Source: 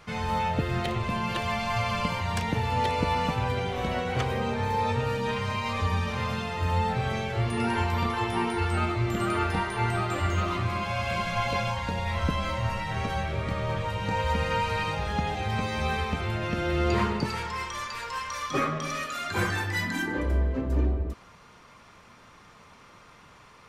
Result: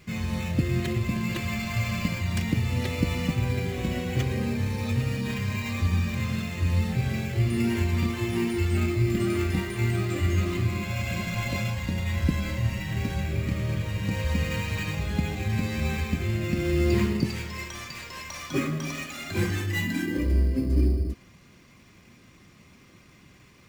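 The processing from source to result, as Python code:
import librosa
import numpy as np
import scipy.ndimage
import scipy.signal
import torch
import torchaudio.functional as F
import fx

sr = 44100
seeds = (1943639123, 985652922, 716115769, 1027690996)

p1 = fx.band_shelf(x, sr, hz=940.0, db=-13.5, octaves=1.7)
p2 = fx.sample_hold(p1, sr, seeds[0], rate_hz=4800.0, jitter_pct=0)
p3 = p1 + F.gain(torch.from_numpy(p2), -3.5).numpy()
y = fx.notch_comb(p3, sr, f0_hz=450.0)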